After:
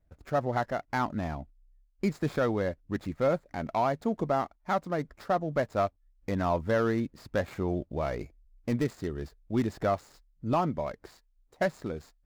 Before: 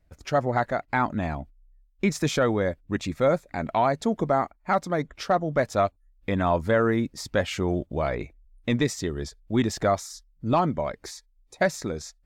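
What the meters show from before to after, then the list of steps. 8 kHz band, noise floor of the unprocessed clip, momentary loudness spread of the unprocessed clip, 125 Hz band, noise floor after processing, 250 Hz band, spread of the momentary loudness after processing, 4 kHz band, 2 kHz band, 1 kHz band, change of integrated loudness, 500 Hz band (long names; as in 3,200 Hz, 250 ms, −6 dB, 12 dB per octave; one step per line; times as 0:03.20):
below −15 dB, −64 dBFS, 10 LU, −4.5 dB, −68 dBFS, −4.5 dB, 9 LU, −10.5 dB, −7.0 dB, −5.0 dB, −5.0 dB, −4.5 dB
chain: running median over 15 samples
level −4.5 dB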